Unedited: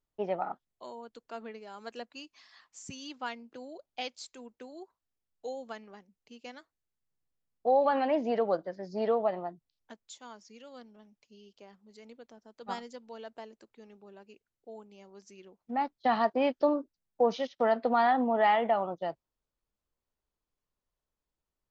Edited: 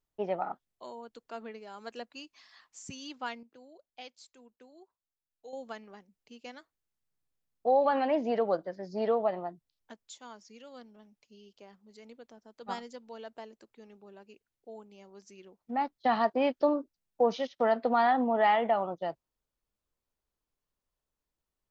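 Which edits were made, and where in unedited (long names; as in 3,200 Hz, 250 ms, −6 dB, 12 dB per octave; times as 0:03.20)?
0:03.43–0:05.53: clip gain −9.5 dB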